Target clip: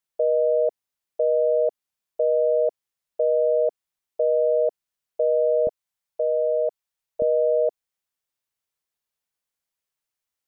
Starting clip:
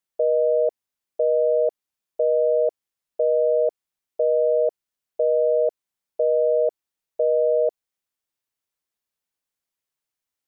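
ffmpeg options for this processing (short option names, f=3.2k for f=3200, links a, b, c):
-af "asetnsamples=n=441:p=0,asendcmd='5.67 equalizer g -12.5;7.22 equalizer g -4',equalizer=f=290:t=o:w=0.9:g=-4"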